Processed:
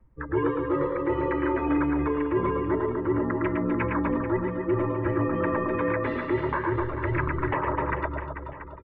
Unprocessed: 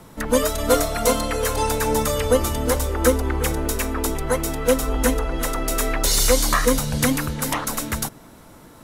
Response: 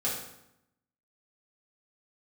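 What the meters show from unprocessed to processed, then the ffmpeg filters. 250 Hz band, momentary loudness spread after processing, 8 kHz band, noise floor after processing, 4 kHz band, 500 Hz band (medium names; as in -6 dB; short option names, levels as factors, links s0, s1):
-0.5 dB, 3 LU, under -40 dB, -40 dBFS, under -25 dB, -5.0 dB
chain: -filter_complex "[0:a]bandreject=f=870:w=5.1,afftdn=nr=30:nf=-32,highpass=f=190:t=q:w=0.5412,highpass=f=190:t=q:w=1.307,lowpass=f=2700:t=q:w=0.5176,lowpass=f=2700:t=q:w=0.7071,lowpass=f=2700:t=q:w=1.932,afreqshift=-150,tiltshelf=f=800:g=4.5,aecho=1:1:3.1:0.32,areverse,acompressor=threshold=0.0501:ratio=16,areverse,equalizer=f=500:t=o:w=1:g=7,equalizer=f=1000:t=o:w=1:g=6,equalizer=f=2000:t=o:w=1:g=8,asplit=2[s0][s1];[s1]aecho=0:1:110|253|438.9|680.6|994.7:0.631|0.398|0.251|0.158|0.1[s2];[s0][s2]amix=inputs=2:normalize=0,alimiter=limit=0.168:level=0:latency=1:release=388"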